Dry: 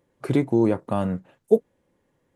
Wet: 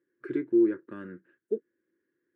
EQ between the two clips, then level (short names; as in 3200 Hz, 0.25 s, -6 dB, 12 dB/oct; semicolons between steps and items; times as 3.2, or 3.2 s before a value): double band-pass 750 Hz, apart 2.2 oct; 0.0 dB